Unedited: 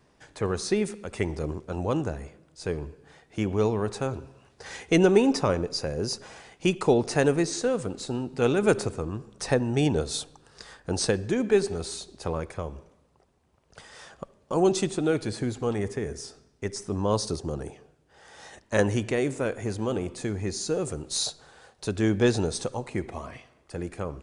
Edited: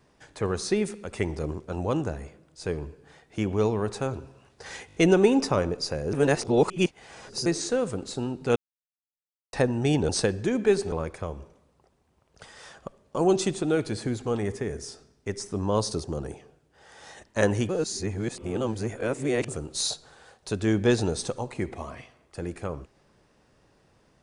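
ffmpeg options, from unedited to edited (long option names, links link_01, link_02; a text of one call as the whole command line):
ffmpeg -i in.wav -filter_complex "[0:a]asplit=13[link_01][link_02][link_03][link_04][link_05][link_06][link_07][link_08][link_09][link_10][link_11][link_12][link_13];[link_01]atrim=end=4.892[link_14];[link_02]atrim=start=4.868:end=4.892[link_15];[link_03]atrim=start=4.868:end=4.892[link_16];[link_04]atrim=start=4.868:end=4.892[link_17];[link_05]atrim=start=4.868:end=6.052[link_18];[link_06]atrim=start=6.048:end=7.382,asetpts=PTS-STARTPTS,areverse[link_19];[link_07]atrim=start=7.378:end=8.48,asetpts=PTS-STARTPTS,afade=type=out:start_time=1.098:duration=0.004:curve=hsin[link_20];[link_08]atrim=start=8.48:end=9.45,asetpts=PTS-STARTPTS,volume=0[link_21];[link_09]atrim=start=9.45:end=10.012,asetpts=PTS-STARTPTS,afade=type=in:duration=0.004:curve=hsin[link_22];[link_10]atrim=start=10.938:end=11.772[link_23];[link_11]atrim=start=12.278:end=19.052[link_24];[link_12]atrim=start=19.048:end=20.842,asetpts=PTS-STARTPTS,areverse[link_25];[link_13]atrim=start=20.838[link_26];[link_14][link_15]acrossfade=duration=0.004:curve1=hsin:curve2=hsin[link_27];[link_27][link_16]acrossfade=duration=0.004:curve1=hsin:curve2=hsin[link_28];[link_28][link_17]acrossfade=duration=0.004:curve1=hsin:curve2=hsin[link_29];[link_29][link_18]acrossfade=duration=0.004:curve1=hsin:curve2=hsin[link_30];[link_30][link_19]acrossfade=duration=0.004:curve1=hsin:curve2=hsin[link_31];[link_20][link_21][link_22]concat=n=3:v=0:a=1[link_32];[link_31][link_32]acrossfade=duration=0.004:curve1=hsin:curve2=hsin[link_33];[link_33][link_23]acrossfade=duration=0.004:curve1=hsin:curve2=hsin[link_34];[link_34][link_24]acrossfade=duration=0.004:curve1=hsin:curve2=hsin[link_35];[link_35][link_25]acrossfade=duration=0.004:curve1=hsin:curve2=hsin[link_36];[link_36][link_26]acrossfade=duration=0.004:curve1=hsin:curve2=hsin" out.wav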